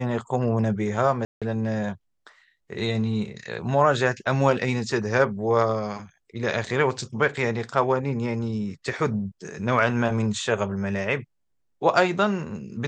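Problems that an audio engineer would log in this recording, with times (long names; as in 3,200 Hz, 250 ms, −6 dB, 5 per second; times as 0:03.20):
0:01.25–0:01.42: drop-out 166 ms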